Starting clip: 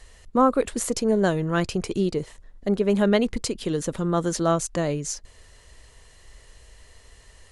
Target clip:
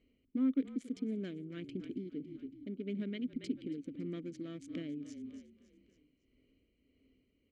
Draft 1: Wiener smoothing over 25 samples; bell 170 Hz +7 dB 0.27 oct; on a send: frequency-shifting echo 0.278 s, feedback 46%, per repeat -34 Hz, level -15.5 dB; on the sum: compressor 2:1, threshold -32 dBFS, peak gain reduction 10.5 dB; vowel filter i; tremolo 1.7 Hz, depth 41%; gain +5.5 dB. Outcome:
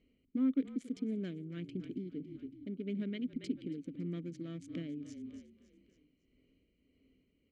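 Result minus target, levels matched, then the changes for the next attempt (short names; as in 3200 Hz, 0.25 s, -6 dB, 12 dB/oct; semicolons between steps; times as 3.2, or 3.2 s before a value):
125 Hz band +3.0 dB
remove: bell 170 Hz +7 dB 0.27 oct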